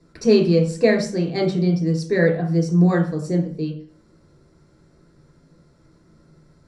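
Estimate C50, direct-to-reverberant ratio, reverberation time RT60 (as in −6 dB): 7.5 dB, −1.5 dB, 0.45 s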